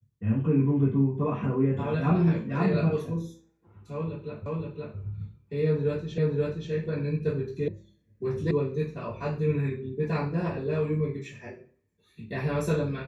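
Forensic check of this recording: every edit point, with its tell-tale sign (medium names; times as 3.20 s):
4.46 s: repeat of the last 0.52 s
6.18 s: repeat of the last 0.53 s
7.68 s: sound stops dead
8.51 s: sound stops dead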